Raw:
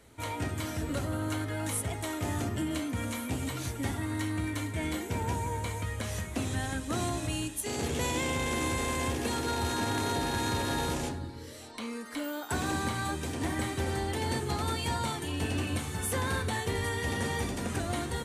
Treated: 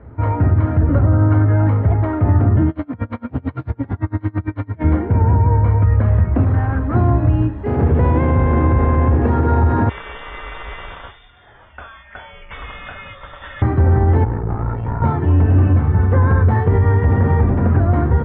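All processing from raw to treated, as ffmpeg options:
-filter_complex "[0:a]asettb=1/sr,asplit=3[a][b][c];[a]atrim=end=2.694[d];[b]atrim=start=2.69:end=4.84,asetpts=PTS-STARTPTS,afade=t=in:d=0.004:c=qsin,afade=t=out:st=2.146:d=0.004:c=qsin,highpass=f=130:p=1,equalizer=f=4.6k:t=o:w=1.2:g=12.5,aeval=exprs='val(0)*pow(10,-32*(0.5-0.5*cos(2*PI*8.9*n/s))/20)':c=same[e];[c]atrim=start=4.836[f];[d][e]acrossfade=d=0.004:c1=hsin:c2=qsin[g];[g][f]acrossfade=d=0.004:c1=qsin:c2=hsin,asettb=1/sr,asplit=3[h][i][j];[h]atrim=end=6.444[k];[i]atrim=start=6.44:end=6.95,asetpts=PTS-STARTPTS,afade=t=in:d=0.004:c=qsin,afade=t=out:st=0.506:d=0.004:c=qsin,equalizer=f=1.2k:t=o:w=1.9:g=4,asoftclip=type=hard:threshold=-34dB[l];[j]atrim=start=6.946[m];[k][l]acrossfade=d=0.004:c1=hsin:c2=qsin[n];[n][m]acrossfade=d=0.004:c1=qsin:c2=hsin,asettb=1/sr,asplit=3[o][p][q];[o]atrim=end=9.894[r];[p]atrim=start=9.89:end=13.62,asetpts=PTS-STARTPTS,afade=t=in:d=0.004:c=qsin,afade=t=out:st=3.726:d=0.004:c=qsin,lowpass=f=3.1k:t=q:w=0.5098,lowpass=f=3.1k:t=q:w=0.6013,lowpass=f=3.1k:t=q:w=0.9,lowpass=f=3.1k:t=q:w=2.563,afreqshift=-3700,asubboost=boost=8:cutoff=79[s];[q]atrim=start=13.616[t];[r][s]acrossfade=d=0.004:c1=hsin:c2=qsin[u];[u][t]acrossfade=d=0.004:c1=qsin:c2=hsin,asettb=1/sr,asplit=3[v][w][x];[v]atrim=end=14.244[y];[w]atrim=start=14.24:end=15.02,asetpts=PTS-STARTPTS,afade=t=in:d=0.004:c=qsin,afade=t=out:st=0.776:d=0.004:c=qsin,aeval=exprs='val(0)*sin(2*PI*29*n/s)':c=same,adynamicsmooth=sensitivity=5.5:basefreq=2.5k,aeval=exprs='(tanh(56.2*val(0)+0.6)-tanh(0.6))/56.2':c=same[z];[x]atrim=start=15.016[aa];[y][z]acrossfade=d=0.004:c1=hsin:c2=qsin[ab];[ab][aa]acrossfade=d=0.004:c1=qsin:c2=hsin,lowpass=f=1.5k:w=0.5412,lowpass=f=1.5k:w=1.3066,equalizer=f=83:t=o:w=1.8:g=12,alimiter=level_in=18.5dB:limit=-1dB:release=50:level=0:latency=1,volume=-5dB"

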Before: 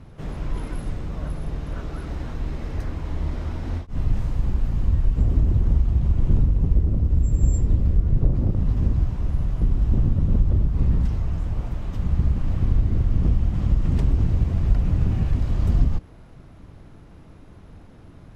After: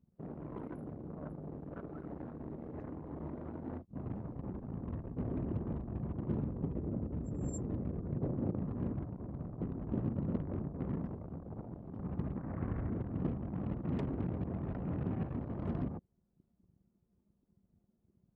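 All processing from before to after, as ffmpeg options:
-filter_complex "[0:a]asettb=1/sr,asplit=3[a][b][c];[a]atrim=end=10.314[d];[b]atrim=start=10.31:end=11.55,asetpts=PTS-STARTPTS,afade=t=in:d=0.004:c=qsin,afade=t=out:st=1.236:d=0.004:c=qsin,aeval=exprs='sgn(val(0))*max(abs(val(0))-0.015,0)':c=same,bandreject=f=60:t=h:w=6,bandreject=f=120:t=h:w=6[e];[c]atrim=start=11.546[f];[d][e]acrossfade=d=0.004:c1=hsin:c2=qsin[g];[g][f]acrossfade=d=0.004:c1=qsin:c2=hsin,asettb=1/sr,asplit=3[h][i][j];[h]atrim=end=12.374[k];[i]atrim=start=12.37:end=12.9,asetpts=PTS-STARTPTS,afade=t=in:d=0.004:c=qsin,afade=t=out:st=0.526:d=0.004:c=qsin,lowpass=f=1.8k:t=q:w=1.7,asubboost=boost=9.5:cutoff=120[l];[j]atrim=start=12.896[m];[k][l]acrossfade=d=0.004:c1=hsin:c2=qsin[n];[n][m]acrossfade=d=0.004:c1=qsin:c2=hsin,anlmdn=15.8,highpass=220,volume=-3.5dB"

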